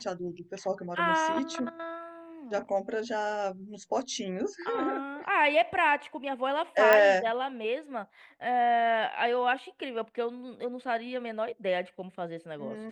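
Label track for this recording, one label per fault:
6.930000	6.930000	click −9 dBFS

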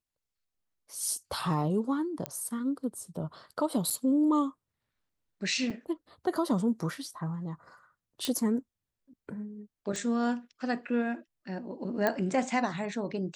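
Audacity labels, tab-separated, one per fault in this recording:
2.260000	2.260000	click −16 dBFS
3.900000	3.910000	drop-out 6.7 ms
5.700000	5.710000	drop-out 5.1 ms
8.250000	8.250000	click −14 dBFS
9.960000	9.960000	click −22 dBFS
12.070000	12.070000	click −13 dBFS

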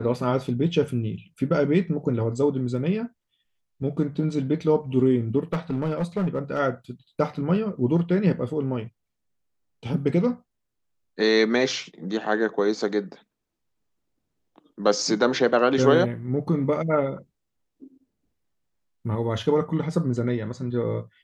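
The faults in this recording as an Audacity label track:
5.530000	6.600000	clipping −20 dBFS

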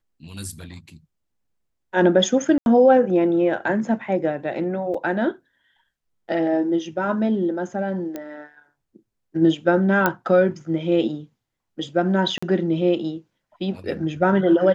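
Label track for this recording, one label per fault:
2.580000	2.660000	drop-out 81 ms
4.940000	4.940000	drop-out 4.2 ms
8.160000	8.160000	click −17 dBFS
10.060000	10.060000	click −5 dBFS
12.380000	12.430000	drop-out 45 ms

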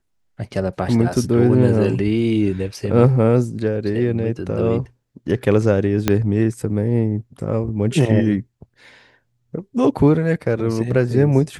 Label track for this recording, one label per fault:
6.080000	6.080000	click −2 dBFS

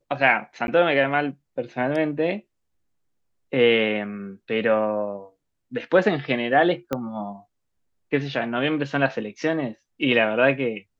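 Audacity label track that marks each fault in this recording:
0.670000	0.680000	drop-out 11 ms
6.930000	6.930000	click −12 dBFS

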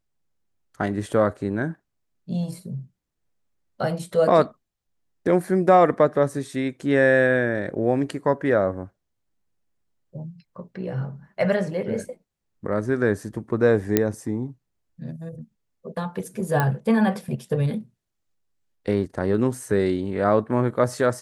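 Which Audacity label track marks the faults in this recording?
13.970000	13.970000	click −4 dBFS
16.600000	16.600000	click −9 dBFS

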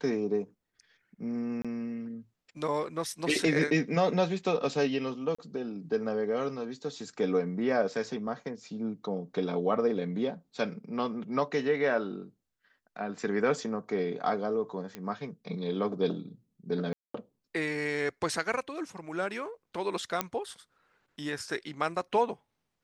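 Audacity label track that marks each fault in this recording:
1.620000	1.650000	drop-out 26 ms
5.350000	5.380000	drop-out 35 ms
14.950000	14.950000	click −23 dBFS
16.930000	17.140000	drop-out 214 ms
20.210000	20.210000	click −11 dBFS

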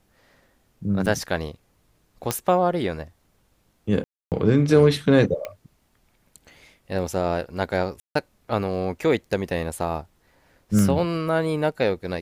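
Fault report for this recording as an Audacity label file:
1.060000	1.070000	drop-out 5.5 ms
2.310000	2.310000	click −7 dBFS
4.040000	4.320000	drop-out 278 ms
5.450000	5.450000	click −18 dBFS
8.000000	8.150000	drop-out 154 ms
10.790000	10.790000	click −12 dBFS

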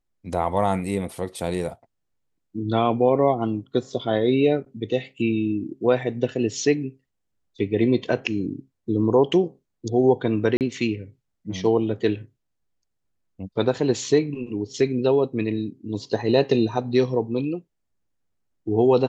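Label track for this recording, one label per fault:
10.570000	10.610000	drop-out 38 ms

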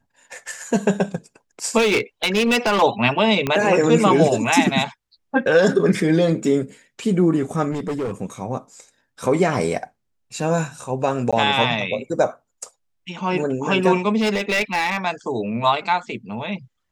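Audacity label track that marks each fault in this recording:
1.770000	2.830000	clipping −14 dBFS
3.470000	3.470000	click −8 dBFS
7.710000	8.130000	clipping −21 dBFS
11.310000	11.330000	drop-out 16 ms
14.170000	14.980000	clipping −15.5 dBFS

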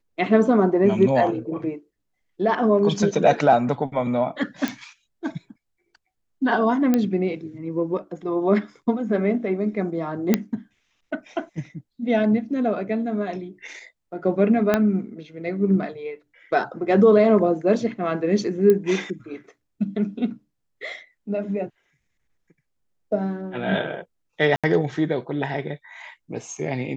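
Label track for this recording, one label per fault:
4.680000	4.680000	click −10 dBFS
6.940000	6.940000	click −8 dBFS
10.340000	10.340000	click −4 dBFS
14.740000	14.740000	click −6 dBFS
18.700000	18.700000	click −9 dBFS
24.560000	24.640000	drop-out 76 ms

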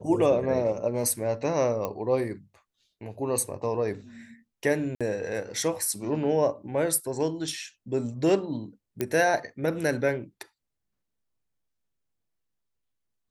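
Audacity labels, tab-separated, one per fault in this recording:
1.850000	1.850000	click −16 dBFS
4.950000	5.010000	drop-out 56 ms
9.010000	9.010000	click −13 dBFS

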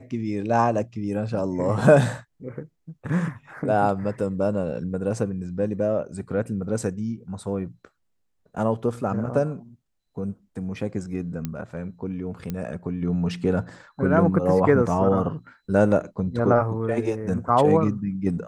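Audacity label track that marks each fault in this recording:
11.450000	11.450000	click −15 dBFS
12.500000	12.500000	click −17 dBFS

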